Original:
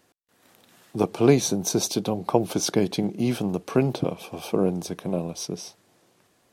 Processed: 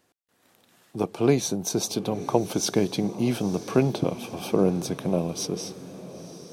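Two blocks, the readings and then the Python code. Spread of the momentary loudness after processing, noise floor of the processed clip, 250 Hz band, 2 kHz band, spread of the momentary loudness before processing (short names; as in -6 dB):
16 LU, -68 dBFS, -1.0 dB, -1.0 dB, 12 LU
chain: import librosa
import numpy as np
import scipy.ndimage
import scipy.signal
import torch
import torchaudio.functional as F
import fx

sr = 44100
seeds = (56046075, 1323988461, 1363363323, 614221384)

y = fx.rider(x, sr, range_db=4, speed_s=2.0)
y = fx.echo_diffused(y, sr, ms=953, feedback_pct=44, wet_db=-15.0)
y = y * librosa.db_to_amplitude(-1.0)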